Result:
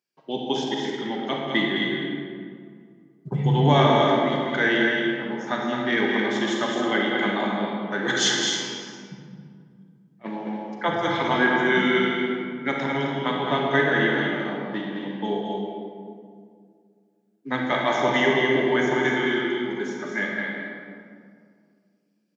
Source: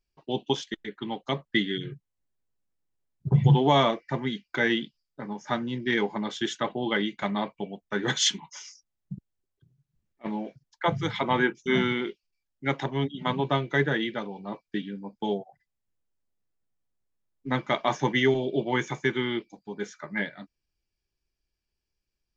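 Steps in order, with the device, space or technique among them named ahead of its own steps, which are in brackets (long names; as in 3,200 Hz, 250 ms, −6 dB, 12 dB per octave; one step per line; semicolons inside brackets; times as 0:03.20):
stadium PA (high-pass filter 170 Hz 24 dB per octave; parametric band 1,600 Hz +4 dB 0.41 octaves; loudspeakers that aren't time-aligned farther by 72 metres −6 dB, 91 metres −8 dB; convolution reverb RT60 2.2 s, pre-delay 35 ms, DRR −0.5 dB)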